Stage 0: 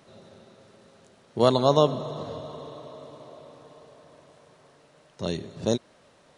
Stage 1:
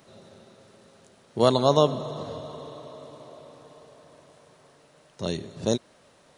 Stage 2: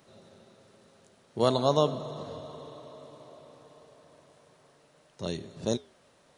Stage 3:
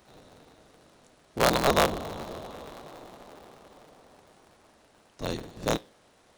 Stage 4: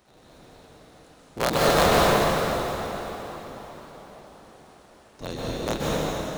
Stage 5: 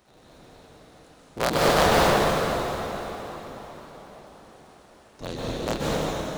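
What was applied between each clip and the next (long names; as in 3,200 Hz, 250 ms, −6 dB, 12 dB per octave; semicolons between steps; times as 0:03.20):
high-shelf EQ 8,800 Hz +8 dB
flanger 0.38 Hz, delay 2 ms, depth 9.4 ms, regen −90%
sub-harmonics by changed cycles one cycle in 3, inverted; level +1.5 dB
dense smooth reverb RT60 3.8 s, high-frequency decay 0.8×, pre-delay 115 ms, DRR −7 dB; level −2.5 dB
highs frequency-modulated by the lows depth 0.44 ms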